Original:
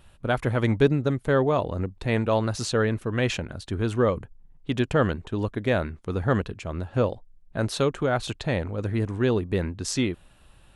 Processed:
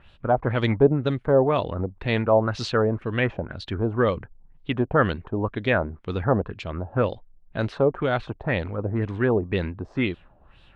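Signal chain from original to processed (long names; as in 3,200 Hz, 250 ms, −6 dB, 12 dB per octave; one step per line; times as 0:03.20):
auto-filter low-pass sine 2 Hz 670–4,000 Hz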